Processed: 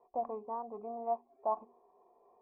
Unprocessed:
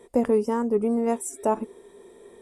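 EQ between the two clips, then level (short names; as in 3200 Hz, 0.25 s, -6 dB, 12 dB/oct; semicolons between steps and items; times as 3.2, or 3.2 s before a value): vocal tract filter a; notches 60/120/180/240/300/360/420 Hz; +2.0 dB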